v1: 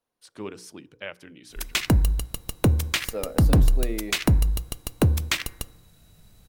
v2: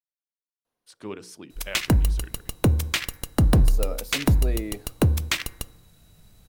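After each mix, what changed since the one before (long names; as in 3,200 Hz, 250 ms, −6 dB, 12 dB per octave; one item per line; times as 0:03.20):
speech: entry +0.65 s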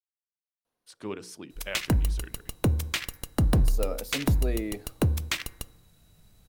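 background −4.5 dB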